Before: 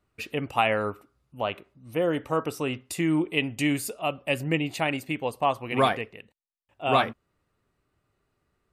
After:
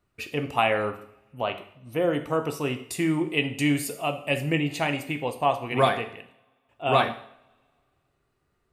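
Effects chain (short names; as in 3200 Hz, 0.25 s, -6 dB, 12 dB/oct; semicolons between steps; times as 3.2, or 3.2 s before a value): two-slope reverb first 0.6 s, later 2.1 s, from -27 dB, DRR 6.5 dB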